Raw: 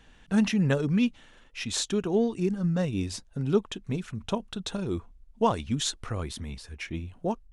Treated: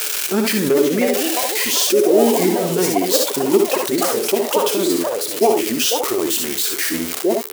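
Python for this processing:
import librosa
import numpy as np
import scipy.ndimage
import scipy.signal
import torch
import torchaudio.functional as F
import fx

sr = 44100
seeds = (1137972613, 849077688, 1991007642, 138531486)

p1 = x + 0.5 * 10.0 ** (-22.5 / 20.0) * np.diff(np.sign(x), prepend=np.sign(x[:1]))
p2 = fx.highpass_res(p1, sr, hz=410.0, q=4.9)
p3 = fx.echo_pitch(p2, sr, ms=487, semitones=5, count=3, db_per_echo=-6.0)
p4 = fx.formant_shift(p3, sr, semitones=-3)
p5 = p4 + fx.room_early_taps(p4, sr, ms=(60, 72), db=(-9.0, -9.0), dry=0)
y = fx.env_flatten(p5, sr, amount_pct=50)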